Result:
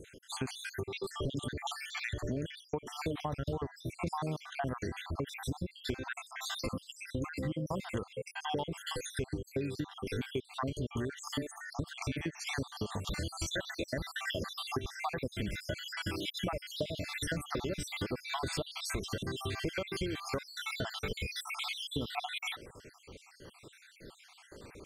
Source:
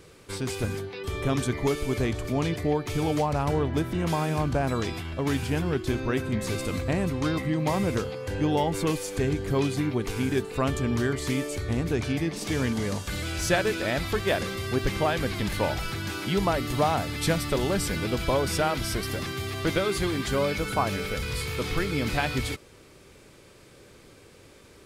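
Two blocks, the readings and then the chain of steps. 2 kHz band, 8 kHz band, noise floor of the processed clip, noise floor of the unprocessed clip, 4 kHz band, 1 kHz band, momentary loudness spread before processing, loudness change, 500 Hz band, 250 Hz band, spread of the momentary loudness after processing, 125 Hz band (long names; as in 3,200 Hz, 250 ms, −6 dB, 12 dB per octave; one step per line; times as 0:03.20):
−8.5 dB, −8.5 dB, −60 dBFS, −52 dBFS, −5.5 dB, −10.5 dB, 5 LU, −10.5 dB, −12.0 dB, −12.0 dB, 5 LU, −11.5 dB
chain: time-frequency cells dropped at random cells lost 67%
dynamic equaliser 3,400 Hz, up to +5 dB, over −58 dBFS, Q 4.9
downward compressor 6 to 1, threshold −36 dBFS, peak gain reduction 14.5 dB
high-shelf EQ 11,000 Hz −8 dB
level +3 dB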